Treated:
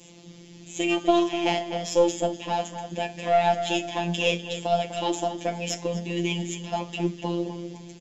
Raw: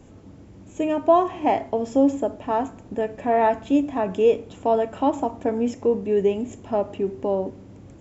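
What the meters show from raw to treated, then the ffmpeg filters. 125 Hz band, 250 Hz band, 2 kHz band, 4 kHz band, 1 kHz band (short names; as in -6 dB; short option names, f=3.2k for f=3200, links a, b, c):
+5.0 dB, -4.5 dB, +5.5 dB, +14.0 dB, -3.0 dB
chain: -filter_complex "[0:a]highpass=100,aemphasis=mode=reproduction:type=75kf,acrossover=split=150|690|3000[a][b][c][d];[c]alimiter=level_in=1dB:limit=-24dB:level=0:latency=1:release=208,volume=-1dB[e];[a][b][e][d]amix=inputs=4:normalize=0,aexciter=amount=11.6:drive=5.3:freq=2.3k,flanger=delay=7.6:depth=4.5:regen=31:speed=0.81:shape=triangular,afftfilt=real='hypot(re,im)*cos(PI*b)':imag='0':win_size=1024:overlap=0.75,aeval=exprs='0.211*(cos(1*acos(clip(val(0)/0.211,-1,1)))-cos(1*PI/2))+0.0266*(cos(2*acos(clip(val(0)/0.211,-1,1)))-cos(2*PI/2))':c=same,asplit=2[f][g];[g]adelay=249,lowpass=f=2.9k:p=1,volume=-9dB,asplit=2[h][i];[i]adelay=249,lowpass=f=2.9k:p=1,volume=0.39,asplit=2[j][k];[k]adelay=249,lowpass=f=2.9k:p=1,volume=0.39,asplit=2[l][m];[m]adelay=249,lowpass=f=2.9k:p=1,volume=0.39[n];[f][h][j][l][n]amix=inputs=5:normalize=0,volume=5.5dB"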